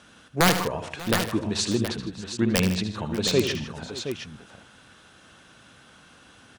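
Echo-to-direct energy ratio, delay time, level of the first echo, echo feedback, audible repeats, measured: -5.5 dB, 76 ms, -10.0 dB, no regular repeats, 5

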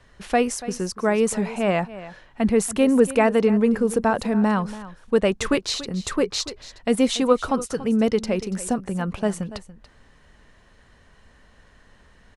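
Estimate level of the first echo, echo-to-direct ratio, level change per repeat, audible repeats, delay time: -16.0 dB, -16.0 dB, no regular repeats, 1, 285 ms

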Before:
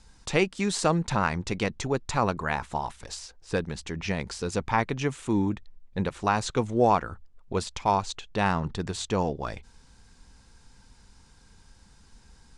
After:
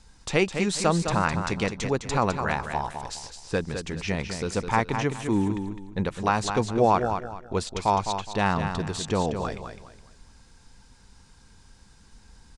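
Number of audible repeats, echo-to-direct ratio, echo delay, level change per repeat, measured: 3, -7.0 dB, 208 ms, -11.0 dB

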